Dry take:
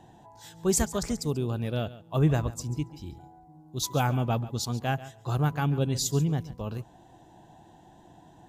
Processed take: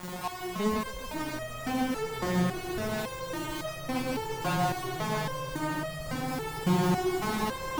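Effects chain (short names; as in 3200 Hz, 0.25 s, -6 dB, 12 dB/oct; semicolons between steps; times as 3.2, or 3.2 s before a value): recorder AGC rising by 12 dB/s; LPF 1200 Hz 24 dB/oct; tilt -1.5 dB/oct; added noise pink -58 dBFS; fuzz box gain 53 dB, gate -46 dBFS; swelling echo 84 ms, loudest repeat 8, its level -12 dB; speed mistake 44.1 kHz file played as 48 kHz; stepped resonator 3.6 Hz 180–630 Hz; gain -2 dB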